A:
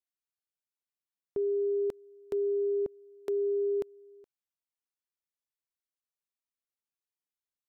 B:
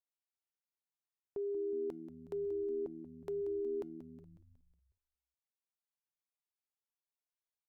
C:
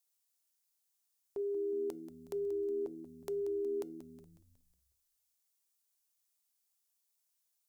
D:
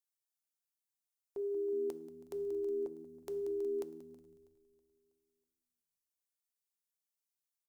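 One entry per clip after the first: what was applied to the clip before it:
parametric band 870 Hz +6.5 dB 0.77 octaves; tuned comb filter 710 Hz, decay 0.37 s, mix 50%; on a send: echo with shifted repeats 183 ms, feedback 54%, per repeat −78 Hz, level −12 dB; on the sum: level −3 dB
bass and treble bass −6 dB, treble +14 dB; mains-hum notches 60/120/180/240/300/360/420/480/540 Hz; level +2.5 dB
repeating echo 323 ms, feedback 51%, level −15.5 dB; coupled-rooms reverb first 0.8 s, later 2 s, DRR 12 dB; expander for the loud parts 1.5 to 1, over −58 dBFS

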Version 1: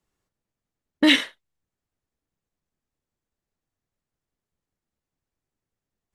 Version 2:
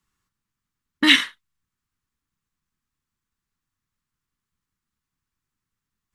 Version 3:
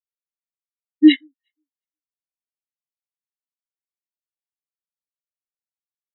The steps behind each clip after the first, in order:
drawn EQ curve 220 Hz 0 dB, 640 Hz −15 dB, 1,100 Hz +5 dB, 2,100 Hz +2 dB; level +2 dB
delay that swaps between a low-pass and a high-pass 180 ms, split 1,000 Hz, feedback 67%, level −10 dB; every bin expanded away from the loudest bin 4 to 1

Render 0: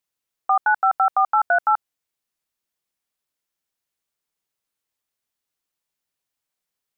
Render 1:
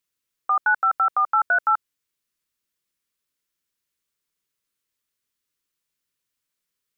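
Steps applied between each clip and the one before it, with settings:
parametric band 740 Hz −14.5 dB 0.45 octaves
level +2 dB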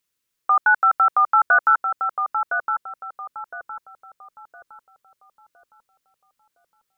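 feedback echo with a low-pass in the loop 1,012 ms, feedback 45%, low-pass 1,000 Hz, level −3 dB
level +3.5 dB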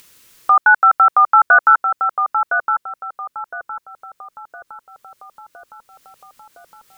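upward compression, threshold −36 dBFS
level +5.5 dB

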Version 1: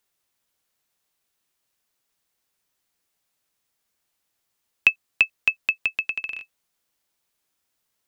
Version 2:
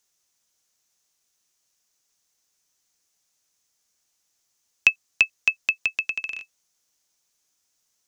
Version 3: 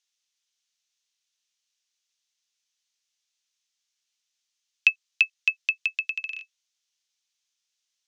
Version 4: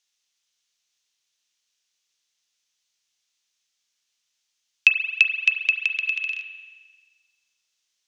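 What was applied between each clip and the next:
parametric band 6,200 Hz +13.5 dB 0.78 octaves; level −1.5 dB
resonant band-pass 3,300 Hz, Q 1.6
spring reverb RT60 1.5 s, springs 33 ms, chirp 45 ms, DRR 5.5 dB; level +4 dB

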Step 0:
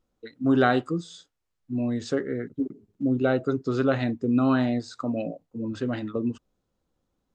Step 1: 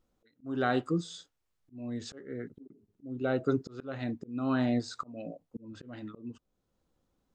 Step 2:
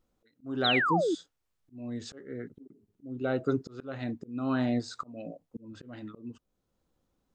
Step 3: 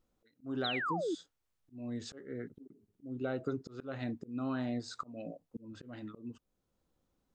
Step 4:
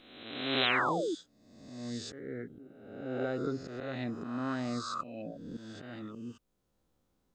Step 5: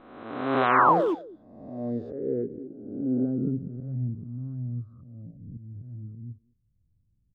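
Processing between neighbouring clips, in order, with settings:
volume swells 645 ms
sound drawn into the spectrogram fall, 0:00.64–0:01.15, 290–4,200 Hz −27 dBFS
downward compressor 6 to 1, threshold −29 dBFS, peak gain reduction 8 dB; level −2.5 dB
peak hold with a rise ahead of every peak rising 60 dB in 1.11 s
low-pass filter sweep 1,100 Hz → 110 Hz, 0:01.11–0:04.37; far-end echo of a speakerphone 210 ms, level −18 dB; level +7 dB

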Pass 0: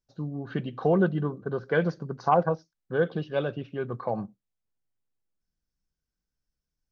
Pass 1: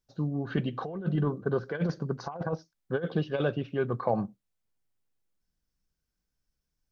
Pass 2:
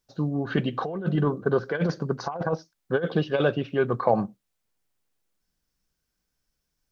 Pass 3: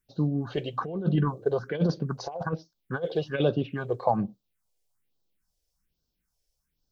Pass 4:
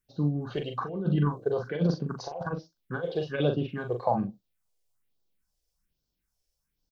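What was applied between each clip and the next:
compressor whose output falls as the input rises −27 dBFS, ratio −0.5
low-shelf EQ 200 Hz −6.5 dB; level +7 dB
all-pass phaser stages 4, 1.2 Hz, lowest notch 200–2,100 Hz
double-tracking delay 41 ms −6 dB; level −2.5 dB

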